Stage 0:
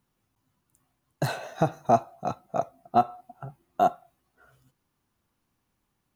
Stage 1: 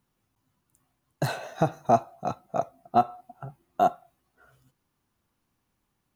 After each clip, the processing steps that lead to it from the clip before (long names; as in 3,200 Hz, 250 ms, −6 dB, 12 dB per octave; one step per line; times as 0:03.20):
no processing that can be heard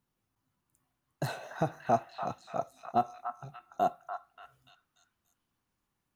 echo through a band-pass that steps 291 ms, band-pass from 1,300 Hz, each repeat 0.7 octaves, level −2 dB
level −6.5 dB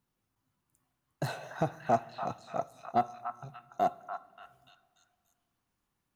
phase distortion by the signal itself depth 0.052 ms
on a send at −23 dB: low-shelf EQ 210 Hz +8.5 dB + convolution reverb RT60 2.3 s, pre-delay 41 ms